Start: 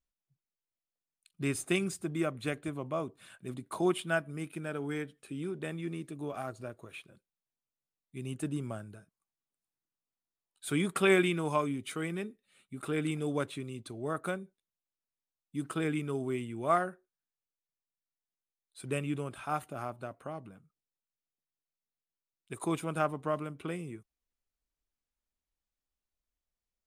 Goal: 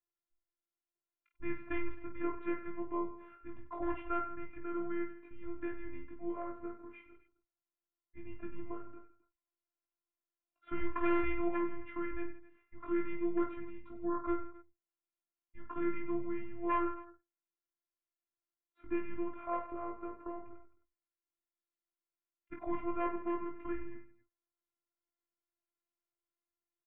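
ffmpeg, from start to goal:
ffmpeg -i in.wav -af "aresample=11025,aeval=exprs='0.0841*(abs(mod(val(0)/0.0841+3,4)-2)-1)':channel_layout=same,aresample=44100,highpass=frequency=180:width_type=q:width=0.5412,highpass=frequency=180:width_type=q:width=1.307,lowpass=frequency=2200:width_type=q:width=0.5176,lowpass=frequency=2200:width_type=q:width=0.7071,lowpass=frequency=2200:width_type=q:width=1.932,afreqshift=-150,afftfilt=real='hypot(re,im)*cos(PI*b)':imag='0':win_size=512:overlap=0.75,aecho=1:1:20|50|95|162.5|263.8:0.631|0.398|0.251|0.158|0.1,volume=1dB" out.wav

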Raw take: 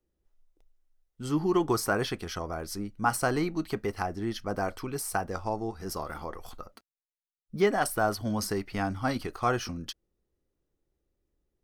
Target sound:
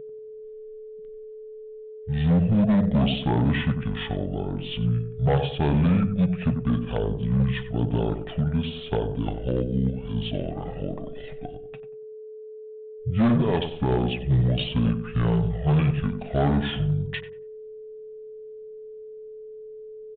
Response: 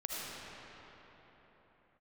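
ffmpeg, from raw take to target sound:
-filter_complex "[0:a]aeval=exprs='val(0)+0.0112*sin(2*PI*750*n/s)':channel_layout=same,equalizer=frequency=250:width_type=o:width=0.67:gain=9,equalizer=frequency=630:width_type=o:width=0.67:gain=-5,equalizer=frequency=1600:width_type=o:width=0.67:gain=-7,asetrate=25442,aresample=44100,asplit=2[link_01][link_02];[link_02]adelay=93,lowpass=frequency=1000:poles=1,volume=-8dB,asplit=2[link_03][link_04];[link_04]adelay=93,lowpass=frequency=1000:poles=1,volume=0.37,asplit=2[link_05][link_06];[link_06]adelay=93,lowpass=frequency=1000:poles=1,volume=0.37,asplit=2[link_07][link_08];[link_08]adelay=93,lowpass=frequency=1000:poles=1,volume=0.37[link_09];[link_01][link_03][link_05][link_07][link_09]amix=inputs=5:normalize=0,aresample=8000,asoftclip=type=hard:threshold=-22dB,aresample=44100,volume=6dB"

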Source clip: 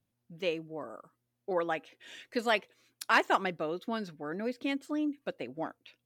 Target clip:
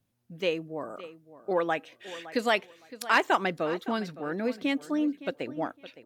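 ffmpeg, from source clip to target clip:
ffmpeg -i in.wav -filter_complex "[0:a]asplit=2[link_01][link_02];[link_02]alimiter=limit=-21.5dB:level=0:latency=1:release=107,volume=-3dB[link_03];[link_01][link_03]amix=inputs=2:normalize=0,asplit=2[link_04][link_05];[link_05]adelay=563,lowpass=frequency=4500:poles=1,volume=-16dB,asplit=2[link_06][link_07];[link_07]adelay=563,lowpass=frequency=4500:poles=1,volume=0.21[link_08];[link_04][link_06][link_08]amix=inputs=3:normalize=0" out.wav

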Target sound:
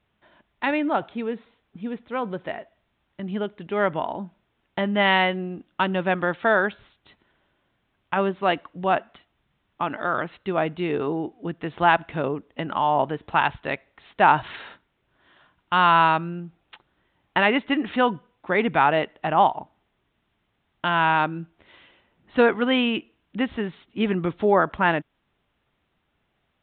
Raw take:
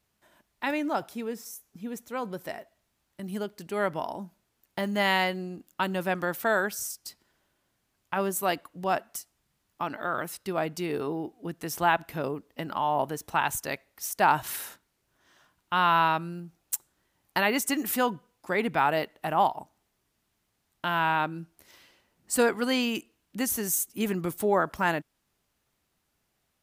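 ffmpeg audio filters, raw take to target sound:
ffmpeg -i in.wav -af "aresample=8000,aresample=44100,volume=5.5dB" out.wav

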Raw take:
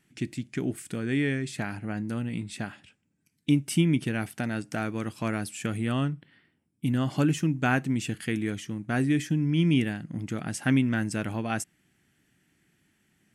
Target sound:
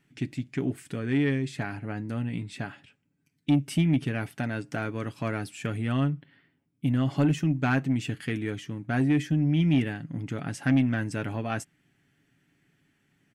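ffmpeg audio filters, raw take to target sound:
ffmpeg -i in.wav -af "equalizer=frequency=10000:width_type=o:width=1.6:gain=-9,aecho=1:1:7.2:0.43,asoftclip=type=tanh:threshold=-14.5dB" out.wav

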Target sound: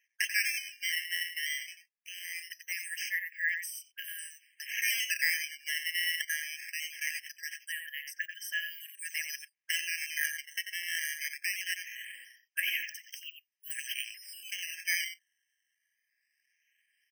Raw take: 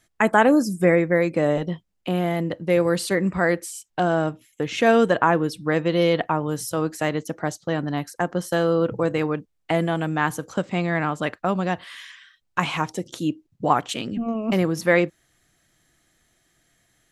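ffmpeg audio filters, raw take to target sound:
ffmpeg -i in.wav -filter_complex "[0:a]dynaudnorm=framelen=400:gausssize=13:maxgain=11.5dB,asplit=2[link_01][link_02];[link_02]adelay=90,highpass=300,lowpass=3400,asoftclip=type=hard:threshold=-9.5dB,volume=-7dB[link_03];[link_01][link_03]amix=inputs=2:normalize=0,acrusher=samples=10:mix=1:aa=0.000001:lfo=1:lforange=16:lforate=0.21,afftfilt=real='re*eq(mod(floor(b*sr/1024/1600),2),1)':imag='im*eq(mod(floor(b*sr/1024/1600),2),1)':win_size=1024:overlap=0.75,volume=-5.5dB" out.wav

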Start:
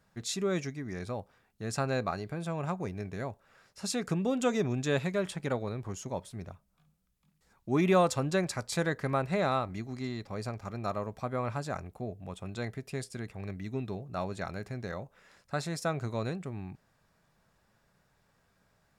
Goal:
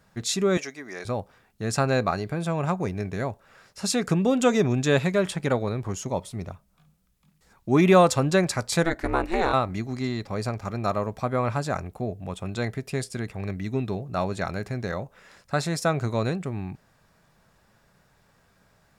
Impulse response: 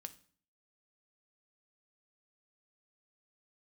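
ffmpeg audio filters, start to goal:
-filter_complex "[0:a]asettb=1/sr,asplit=3[link_01][link_02][link_03];[link_01]atrim=end=0.574[link_04];[link_02]atrim=start=0.57:end=1.05,asetpts=PTS-STARTPTS,afade=type=in:duration=0.004:curve=qsin,afade=type=out:start_time=0.476:duration=0.004:curve=qsin,highpass=480[link_05];[link_03]atrim=start=1.046[link_06];[link_04][link_05]acrossfade=duration=0.004:curve1=hsin:curve2=qsin[link_07];[link_07][link_06]acrossfade=duration=0.004:curve1=qsin:curve2=hsin,asettb=1/sr,asplit=3[link_08][link_09][link_10];[link_08]atrim=end=6.084[link_11];[link_09]atrim=start=6.08:end=6.48,asetpts=PTS-STARTPTS,afade=type=in:duration=0.004:curve=qsin,afade=type=out:start_time=0.396:duration=0.004:curve=qsin,bandreject=frequency=1600:width=5.7[link_12];[link_10]atrim=start=6.476[link_13];[link_11][link_12]acrossfade=duration=0.004:curve1=hsin:curve2=qsin[link_14];[link_14][link_13]acrossfade=duration=0.004:curve1=qsin:curve2=hsin,asplit=3[link_15][link_16][link_17];[link_15]afade=type=out:start_time=8.83:duration=0.02[link_18];[link_16]aeval=exprs='val(0)*sin(2*PI*170*n/s)':channel_layout=same,afade=type=in:start_time=8.83:duration=0.02,afade=type=out:start_time=9.52:duration=0.02[link_19];[link_17]afade=type=in:start_time=9.52:duration=0.02[link_20];[link_18][link_19][link_20]amix=inputs=3:normalize=0,volume=8dB"

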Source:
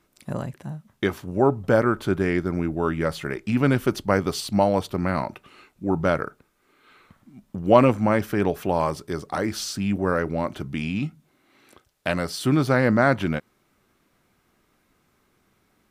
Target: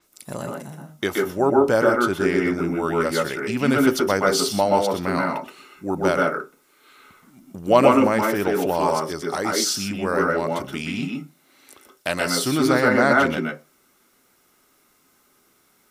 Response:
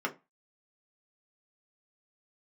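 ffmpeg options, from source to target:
-filter_complex "[0:a]bass=frequency=250:gain=-7,treble=frequency=4000:gain=12,asplit=2[link_01][link_02];[1:a]atrim=start_sample=2205,highshelf=frequency=9400:gain=10.5,adelay=123[link_03];[link_02][link_03]afir=irnorm=-1:irlink=0,volume=-6dB[link_04];[link_01][link_04]amix=inputs=2:normalize=0,adynamicequalizer=threshold=0.00708:dfrequency=7700:dqfactor=0.7:tfrequency=7700:tqfactor=0.7:attack=5:release=100:ratio=0.375:range=3:mode=cutabove:tftype=highshelf"

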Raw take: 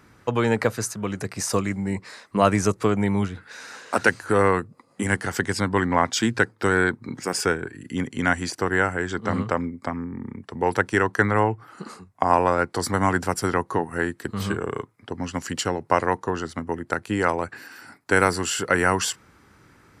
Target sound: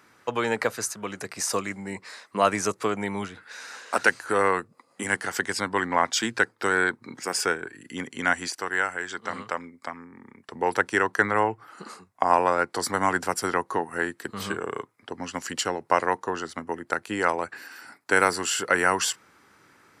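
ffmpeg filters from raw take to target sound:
ffmpeg -i in.wav -af "asetnsamples=nb_out_samples=441:pad=0,asendcmd='8.48 highpass f 1300;10.49 highpass f 450',highpass=frequency=580:poles=1" out.wav

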